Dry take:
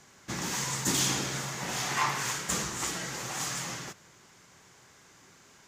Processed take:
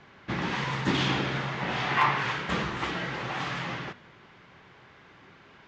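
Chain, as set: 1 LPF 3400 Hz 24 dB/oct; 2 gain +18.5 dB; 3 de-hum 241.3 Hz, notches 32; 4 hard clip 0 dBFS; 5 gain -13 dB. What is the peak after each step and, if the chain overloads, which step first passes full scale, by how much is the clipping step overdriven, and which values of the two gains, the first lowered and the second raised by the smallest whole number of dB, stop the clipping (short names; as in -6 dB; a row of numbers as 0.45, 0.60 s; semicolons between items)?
-15.0, +3.5, +3.0, 0.0, -13.0 dBFS; step 2, 3.0 dB; step 2 +15.5 dB, step 5 -10 dB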